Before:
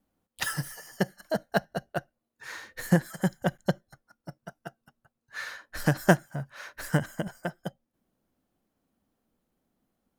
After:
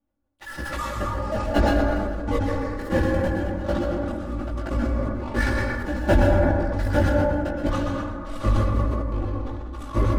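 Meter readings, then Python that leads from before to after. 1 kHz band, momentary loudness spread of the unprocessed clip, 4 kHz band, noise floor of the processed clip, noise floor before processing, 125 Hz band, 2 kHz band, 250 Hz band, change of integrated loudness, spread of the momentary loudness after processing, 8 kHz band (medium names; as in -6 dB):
+8.0 dB, 20 LU, +3.0 dB, -37 dBFS, -84 dBFS, +8.0 dB, +4.0 dB, +7.0 dB, +5.5 dB, 10 LU, -3.5 dB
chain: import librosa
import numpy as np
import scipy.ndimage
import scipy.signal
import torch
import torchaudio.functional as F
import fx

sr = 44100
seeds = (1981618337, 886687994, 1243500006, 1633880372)

p1 = fx.octave_divider(x, sr, octaves=1, level_db=-2.0)
p2 = fx.bass_treble(p1, sr, bass_db=-13, treble_db=-14)
p3 = fx.fuzz(p2, sr, gain_db=34.0, gate_db=-41.0)
p4 = p2 + (p3 * librosa.db_to_amplitude(-7.0))
p5 = fx.low_shelf(p4, sr, hz=350.0, db=11.5)
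p6 = fx.echo_pitch(p5, sr, ms=132, semitones=-6, count=3, db_per_echo=-3.0)
p7 = p6 * (1.0 - 0.81 / 2.0 + 0.81 / 2.0 * np.cos(2.0 * np.pi * 1.3 * (np.arange(len(p6)) / sr)))
p8 = fx.chorus_voices(p7, sr, voices=6, hz=0.82, base_ms=19, depth_ms=2.0, mix_pct=40)
p9 = p8 + 0.82 * np.pad(p8, (int(3.5 * sr / 1000.0), 0))[:len(p8)]
p10 = p9 + 10.0 ** (-13.5 / 20.0) * np.pad(p9, (int(124 * sr / 1000.0), 0))[:len(p9)]
p11 = fx.rev_plate(p10, sr, seeds[0], rt60_s=2.0, hf_ratio=0.3, predelay_ms=105, drr_db=0.0)
p12 = fx.sustainer(p11, sr, db_per_s=25.0)
y = p12 * librosa.db_to_amplitude(-5.5)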